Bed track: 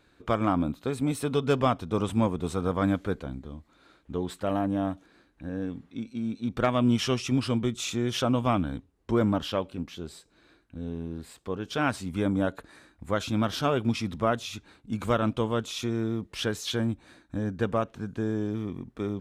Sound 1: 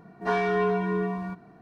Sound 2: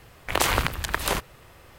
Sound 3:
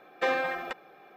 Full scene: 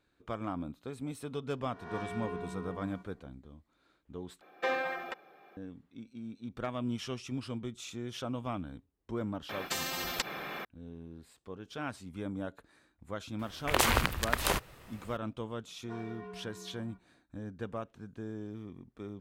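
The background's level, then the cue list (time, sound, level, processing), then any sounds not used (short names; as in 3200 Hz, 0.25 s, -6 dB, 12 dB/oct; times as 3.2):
bed track -12 dB
1.68 add 1 -16 dB + spectral swells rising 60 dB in 0.74 s
4.41 replace with 3 -4.5 dB + low shelf 61 Hz -10.5 dB
9.49 add 3 -2 dB + spectral compressor 10:1
13.39 add 2 -4 dB
15.63 add 1 -18 dB + flange 1.5 Hz, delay 4.8 ms, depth 4.1 ms, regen +70%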